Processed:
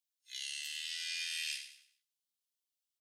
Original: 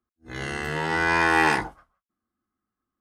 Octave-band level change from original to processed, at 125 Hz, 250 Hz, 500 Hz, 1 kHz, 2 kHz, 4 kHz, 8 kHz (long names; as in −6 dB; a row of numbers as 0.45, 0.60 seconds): below −40 dB, below −40 dB, below −40 dB, below −40 dB, −20.5 dB, −2.0 dB, −1.5 dB